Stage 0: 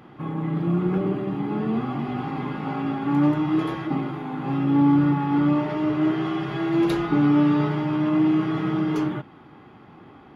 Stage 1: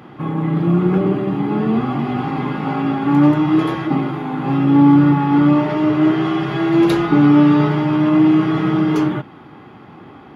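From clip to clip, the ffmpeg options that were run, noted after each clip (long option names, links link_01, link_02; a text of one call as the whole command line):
ffmpeg -i in.wav -af "highpass=61,volume=7.5dB" out.wav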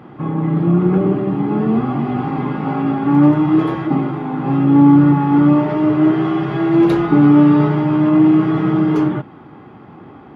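ffmpeg -i in.wav -af "highshelf=frequency=2300:gain=-11,volume=1.5dB" out.wav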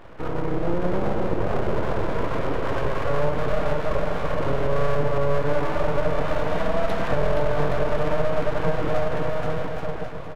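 ffmpeg -i in.wav -filter_complex "[0:a]asplit=2[link_01][link_02];[link_02]aecho=0:1:470|822.5|1087|1285|1434:0.631|0.398|0.251|0.158|0.1[link_03];[link_01][link_03]amix=inputs=2:normalize=0,acompressor=threshold=-14dB:ratio=2.5,aeval=exprs='abs(val(0))':channel_layout=same,volume=-3.5dB" out.wav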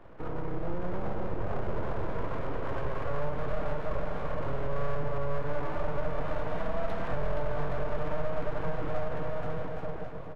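ffmpeg -i in.wav -filter_complex "[0:a]highshelf=frequency=2200:gain=-10,acrossover=split=140|740[link_01][link_02][link_03];[link_02]alimiter=level_in=2.5dB:limit=-24dB:level=0:latency=1,volume=-2.5dB[link_04];[link_01][link_04][link_03]amix=inputs=3:normalize=0,volume=-6dB" out.wav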